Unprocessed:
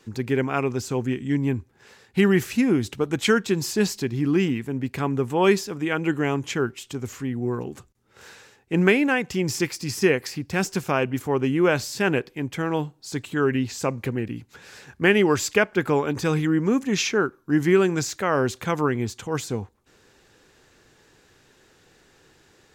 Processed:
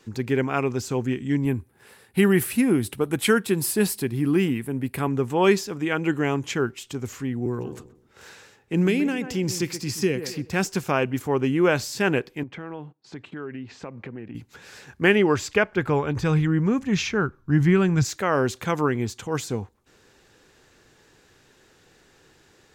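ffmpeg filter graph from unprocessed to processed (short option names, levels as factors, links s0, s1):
-filter_complex "[0:a]asettb=1/sr,asplit=3[s0][s1][s2];[s0]atrim=end=1.454[s3];[s1]atrim=start=1.45:end=5.08,asetpts=PTS-STARTPTS,afade=t=in:d=0.004:c=qsin,afade=t=out:st=3.626:d=0.004:c=qsin,highpass=41,highshelf=f=8000:t=q:w=3:g=7.5[s4];[s2]atrim=start=5.076[s5];[s3][s4]acrossfade=d=0.004:c1=hsin:c2=qsin[s6];[s6][s5]acrossfade=d=0.004:c1=qsin:c2=hsin,asettb=1/sr,asplit=3[s7][s8][s9];[s7]atrim=end=7.464[s10];[s8]atrim=start=7.46:end=10.5,asetpts=PTS-STARTPTS,afade=t=in:d=0.004:c=qsin,afade=t=out:st=3.036:d=0.004:c=qsin,asplit=2[s11][s12];[s12]adelay=126,lowpass=f=890:p=1,volume=0.251,asplit=2[s13][s14];[s14]adelay=126,lowpass=f=890:p=1,volume=0.36,asplit=2[s15][s16];[s16]adelay=126,lowpass=f=890:p=1,volume=0.36,asplit=2[s17][s18];[s18]adelay=126,lowpass=f=890:p=1,volume=0.36[s19];[s11][s13][s15][s17][s19]amix=inputs=5:normalize=0,atrim=end_sample=134064,acrossover=split=390|3000[s20][s21][s22];[s21]acompressor=threshold=0.0224:ratio=6:attack=3.2:release=140:knee=2.83:detection=peak[s23];[s20][s23][s22]amix=inputs=3:normalize=0[s24];[s9]atrim=start=10.496[s25];[s10][s24]acrossfade=d=0.004:c1=hsin:c2=qsin[s26];[s26][s25]acrossfade=d=0.004:c1=qsin:c2=hsin,asettb=1/sr,asplit=3[s27][s28][s29];[s27]atrim=end=12.434[s30];[s28]atrim=start=12.43:end=14.35,asetpts=PTS-STARTPTS,afade=t=in:d=0.004:c=qsin,afade=t=out:st=1.916:d=0.004:c=qsin,agate=range=0.178:threshold=0.00562:ratio=16:release=100:detection=peak,highpass=120,lowpass=2500,acompressor=threshold=0.0178:ratio=3:attack=3.2:release=140:knee=1:detection=peak[s31];[s29]atrim=start=14.346[s32];[s30][s31]acrossfade=d=0.004:c1=hsin:c2=qsin[s33];[s33][s32]acrossfade=d=0.004:c1=qsin:c2=hsin,asettb=1/sr,asplit=3[s34][s35][s36];[s34]atrim=end=15.154[s37];[s35]atrim=start=15.15:end=18.05,asetpts=PTS-STARTPTS,afade=t=in:d=0.004:c=qsin,afade=t=out:st=2.896:d=0.004:c=qsin,lowpass=f=3500:p=1,asubboost=boost=11.5:cutoff=120[s38];[s36]atrim=start=18.046[s39];[s37][s38]acrossfade=d=0.004:c1=hsin:c2=qsin[s40];[s40][s39]acrossfade=d=0.004:c1=qsin:c2=hsin"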